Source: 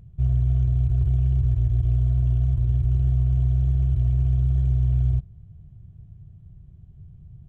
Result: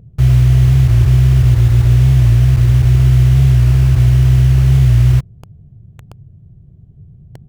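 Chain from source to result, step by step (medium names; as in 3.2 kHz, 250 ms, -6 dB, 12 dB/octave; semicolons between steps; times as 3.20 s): ten-band graphic EQ 125 Hz +6 dB, 250 Hz +8 dB, 500 Hz +11 dB; in parallel at 0 dB: bit crusher 5-bit; on the sum: warped record 45 rpm, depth 100 cents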